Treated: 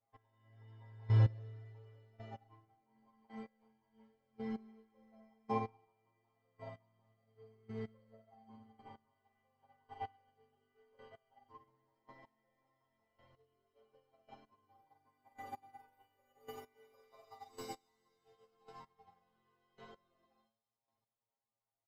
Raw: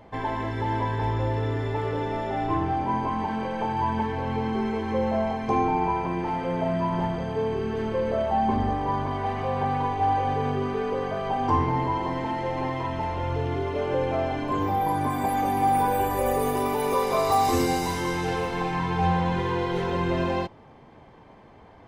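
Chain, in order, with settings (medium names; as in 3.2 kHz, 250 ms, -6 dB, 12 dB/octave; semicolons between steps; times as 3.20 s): peaking EQ 10 kHz -9 dB 0.52 oct; comb 7.5 ms, depth 72%; on a send: feedback echo behind a high-pass 92 ms, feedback 79%, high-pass 5.1 kHz, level -6 dB; on the sum: flange 1.2 Hz, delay 6.3 ms, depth 2.4 ms, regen -87%; bass shelf 180 Hz -6 dB; inharmonic resonator 110 Hz, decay 0.41 s, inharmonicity 0.002; square tremolo 0.91 Hz, depth 65%, duty 15%; upward expansion 2.5:1, over -54 dBFS; trim +8.5 dB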